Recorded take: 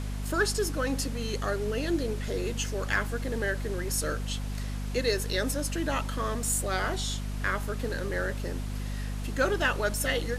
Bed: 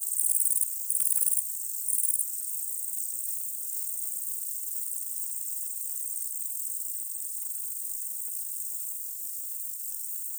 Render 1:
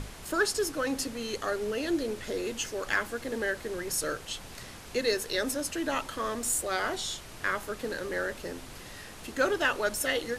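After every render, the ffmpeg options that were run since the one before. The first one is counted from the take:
-af "bandreject=f=50:t=h:w=6,bandreject=f=100:t=h:w=6,bandreject=f=150:t=h:w=6,bandreject=f=200:t=h:w=6,bandreject=f=250:t=h:w=6"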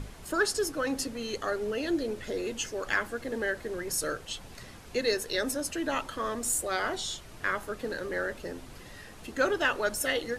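-af "afftdn=nr=6:nf=-46"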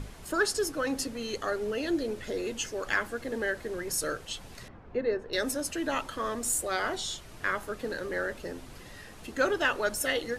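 -filter_complex "[0:a]asettb=1/sr,asplit=3[a][b][c];[a]atrim=end=4.684[d];[b]atrim=start=4.68:end=5.33,asetpts=PTS-STARTPTS,afade=t=in:d=0.004:c=qsin,afade=t=out:st=0.646:d=0.004:c=qsin,lowpass=1.3k[e];[c]atrim=start=5.326[f];[d][e]acrossfade=d=0.004:c1=hsin:c2=qsin[g];[g][f]acrossfade=d=0.004:c1=qsin:c2=hsin"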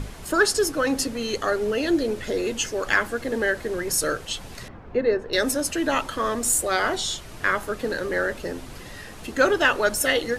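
-af "volume=7.5dB"

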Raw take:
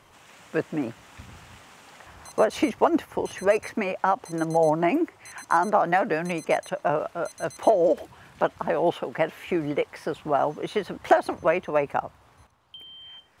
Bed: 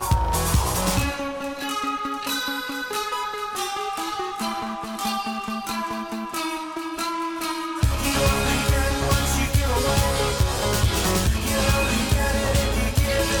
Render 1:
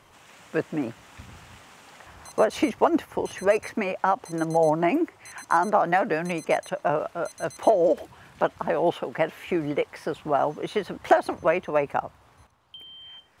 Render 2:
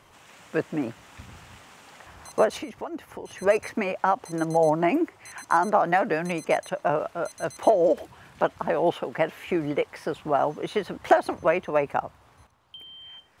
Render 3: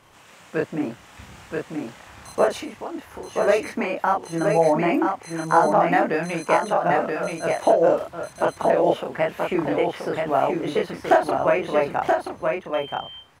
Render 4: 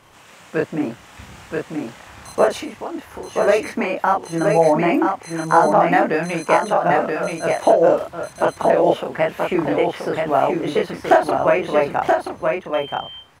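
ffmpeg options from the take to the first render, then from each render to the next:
-af anull
-filter_complex "[0:a]asettb=1/sr,asplit=3[a][b][c];[a]atrim=end=2.574[d];[b]atrim=start=2.57:end=3.42,asetpts=PTS-STARTPTS,afade=t=in:d=0.004:c=qsin,afade=t=out:st=0.846:d=0.004:c=qsin,acompressor=threshold=-41dB:ratio=2:attack=3.2:release=140:knee=1:detection=peak[e];[c]atrim=start=3.416[f];[d][e]acrossfade=d=0.004:c1=hsin:c2=qsin[g];[g][f]acrossfade=d=0.004:c1=qsin:c2=hsin"
-filter_complex "[0:a]asplit=2[a][b];[b]adelay=30,volume=-2dB[c];[a][c]amix=inputs=2:normalize=0,aecho=1:1:978:0.631"
-af "volume=3.5dB,alimiter=limit=-2dB:level=0:latency=1"

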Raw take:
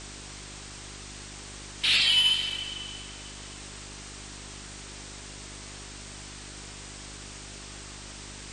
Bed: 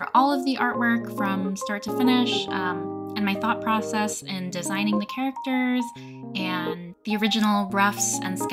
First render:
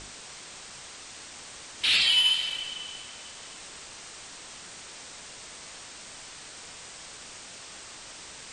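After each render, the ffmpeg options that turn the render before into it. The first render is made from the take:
-af "bandreject=f=50:t=h:w=4,bandreject=f=100:t=h:w=4,bandreject=f=150:t=h:w=4,bandreject=f=200:t=h:w=4,bandreject=f=250:t=h:w=4,bandreject=f=300:t=h:w=4,bandreject=f=350:t=h:w=4,bandreject=f=400:t=h:w=4"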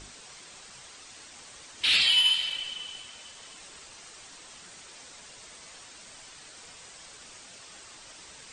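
-af "afftdn=nr=6:nf=-45"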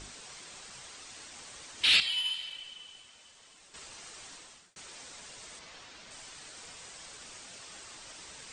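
-filter_complex "[0:a]asettb=1/sr,asplit=3[a][b][c];[a]atrim=end=5.594[d];[b]atrim=start=5.59:end=6.11,asetpts=PTS-STARTPTS,afade=t=in:d=0.004:c=qsin,afade=t=out:st=0.516:d=0.004:c=qsin,lowpass=5.1k[e];[c]atrim=start=6.106[f];[d][e]acrossfade=d=0.004:c1=hsin:c2=qsin[g];[g][f]acrossfade=d=0.004:c1=qsin:c2=hsin,asplit=4[h][i][j][k];[h]atrim=end=2.002[l];[i]atrim=start=1.998:end=3.742,asetpts=PTS-STARTPTS,volume=-10dB[m];[j]atrim=start=3.738:end=4.76,asetpts=PTS-STARTPTS,afade=t=out:st=0.572:d=0.45[n];[k]atrim=start=4.76,asetpts=PTS-STARTPTS,afade=t=in:d=0.004:c=hsin[o];[l][m]acrossfade=d=0.004:c1=hsin:c2=hsin[p];[n][o]concat=n=2:v=0:a=1[q];[p][q]acrossfade=d=0.004:c1=hsin:c2=hsin"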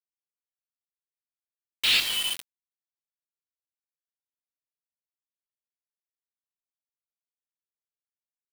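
-filter_complex "[0:a]asplit=2[a][b];[b]asoftclip=type=tanh:threshold=-25dB,volume=-11dB[c];[a][c]amix=inputs=2:normalize=0,acrusher=bits=4:mix=0:aa=0.000001"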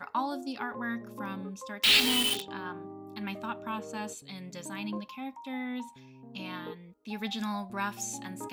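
-filter_complex "[1:a]volume=-12.5dB[a];[0:a][a]amix=inputs=2:normalize=0"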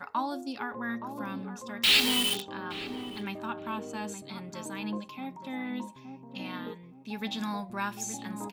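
-filter_complex "[0:a]asplit=2[a][b];[b]adelay=870,lowpass=f=840:p=1,volume=-7dB,asplit=2[c][d];[d]adelay=870,lowpass=f=840:p=1,volume=0.36,asplit=2[e][f];[f]adelay=870,lowpass=f=840:p=1,volume=0.36,asplit=2[g][h];[h]adelay=870,lowpass=f=840:p=1,volume=0.36[i];[a][c][e][g][i]amix=inputs=5:normalize=0"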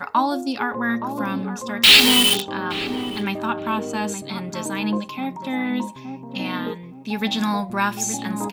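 -af "volume=11.5dB,alimiter=limit=-1dB:level=0:latency=1"

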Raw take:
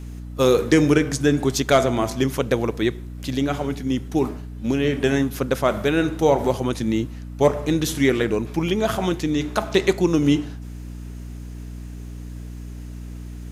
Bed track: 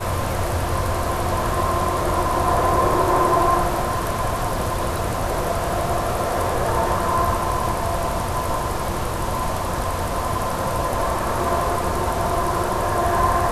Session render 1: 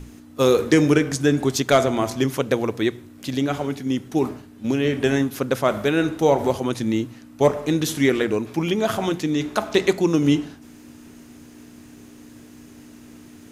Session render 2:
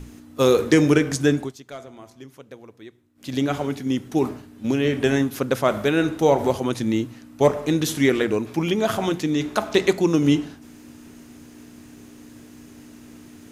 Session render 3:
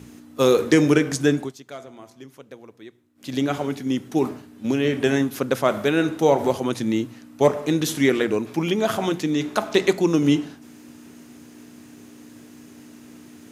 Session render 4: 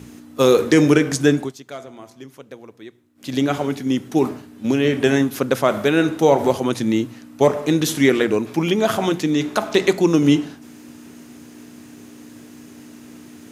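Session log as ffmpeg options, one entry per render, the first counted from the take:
-af "bandreject=f=60:t=h:w=6,bandreject=f=120:t=h:w=6,bandreject=f=180:t=h:w=6"
-filter_complex "[0:a]asplit=3[a][b][c];[a]atrim=end=1.53,asetpts=PTS-STARTPTS,afade=t=out:st=1.3:d=0.23:silence=0.0891251[d];[b]atrim=start=1.53:end=3.15,asetpts=PTS-STARTPTS,volume=-21dB[e];[c]atrim=start=3.15,asetpts=PTS-STARTPTS,afade=t=in:d=0.23:silence=0.0891251[f];[d][e][f]concat=n=3:v=0:a=1"
-af "highpass=120"
-af "volume=3.5dB,alimiter=limit=-3dB:level=0:latency=1"

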